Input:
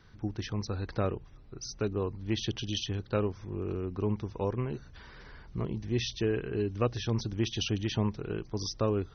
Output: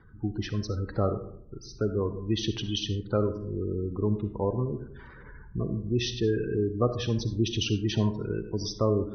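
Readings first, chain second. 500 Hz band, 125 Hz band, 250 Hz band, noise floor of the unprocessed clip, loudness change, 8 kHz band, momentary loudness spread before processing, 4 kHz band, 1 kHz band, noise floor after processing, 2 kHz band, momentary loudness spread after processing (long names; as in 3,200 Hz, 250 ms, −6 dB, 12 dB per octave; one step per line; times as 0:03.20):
+4.0 dB, +3.5 dB, +4.0 dB, −52 dBFS, +3.5 dB, can't be measured, 12 LU, +3.0 dB, +2.0 dB, −48 dBFS, +0.5 dB, 10 LU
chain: gate on every frequency bin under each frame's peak −20 dB strong
comb and all-pass reverb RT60 0.68 s, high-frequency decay 0.4×, pre-delay 20 ms, DRR 9 dB
low-pass that shuts in the quiet parts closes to 2,000 Hz, open at −25 dBFS
level +3.5 dB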